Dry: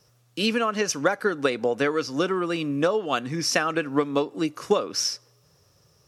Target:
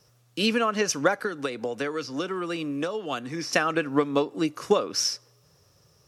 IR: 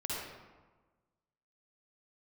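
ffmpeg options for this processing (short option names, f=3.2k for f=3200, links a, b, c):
-filter_complex "[0:a]asettb=1/sr,asplit=3[a][b][c];[a]atrim=end=1.234[d];[b]atrim=start=1.23:end=3.53,asetpts=PTS-STARTPTS,afade=t=in:d=0.004:c=qsin,afade=t=out:st=2.296:d=0.004:c=qsin,acrossover=split=120|240|1900|5500[e][f][g][h][i];[e]acompressor=threshold=-53dB:ratio=4[j];[f]acompressor=threshold=-43dB:ratio=4[k];[g]acompressor=threshold=-29dB:ratio=4[l];[h]acompressor=threshold=-38dB:ratio=4[m];[i]acompressor=threshold=-49dB:ratio=4[n];[j][k][l][m][n]amix=inputs=5:normalize=0[o];[c]atrim=start=3.526[p];[d][o]acrossfade=d=0.004:c1=hsin:c2=qsin[q];[q][p]acrossfade=d=0.004:c1=qsin:c2=hsin"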